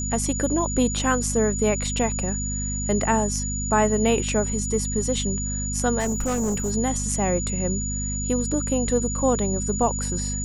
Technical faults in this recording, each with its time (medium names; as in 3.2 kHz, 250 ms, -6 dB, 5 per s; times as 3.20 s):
hum 50 Hz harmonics 5 -29 dBFS
whine 6.9 kHz -29 dBFS
5.99–6.72 s: clipped -20.5 dBFS